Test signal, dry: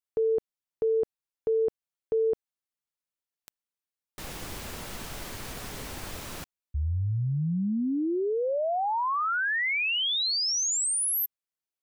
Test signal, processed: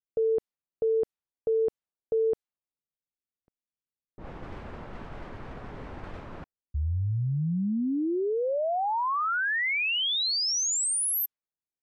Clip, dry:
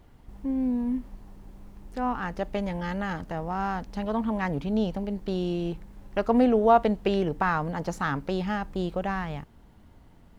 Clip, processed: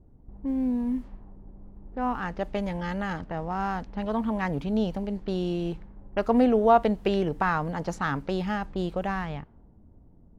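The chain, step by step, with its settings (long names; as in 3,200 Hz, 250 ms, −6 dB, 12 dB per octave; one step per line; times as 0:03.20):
low-pass that shuts in the quiet parts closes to 390 Hz, open at −25.5 dBFS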